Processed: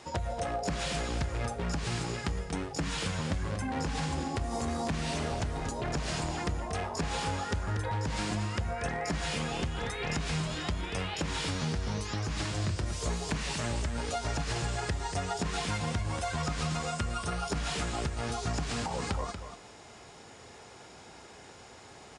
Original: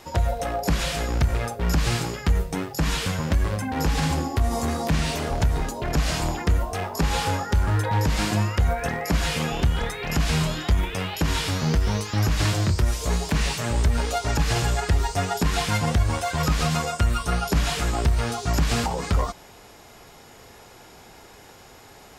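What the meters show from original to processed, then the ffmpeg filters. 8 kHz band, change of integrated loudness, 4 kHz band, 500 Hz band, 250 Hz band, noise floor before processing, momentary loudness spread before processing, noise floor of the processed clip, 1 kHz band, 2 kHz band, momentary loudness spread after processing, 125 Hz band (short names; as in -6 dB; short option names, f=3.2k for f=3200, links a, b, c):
-7.5 dB, -9.0 dB, -7.5 dB, -7.0 dB, -8.0 dB, -48 dBFS, 3 LU, -51 dBFS, -7.5 dB, -7.5 dB, 17 LU, -10.0 dB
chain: -af "highpass=60,acompressor=threshold=-26dB:ratio=6,aecho=1:1:236:0.355,aresample=22050,aresample=44100,volume=-3.5dB"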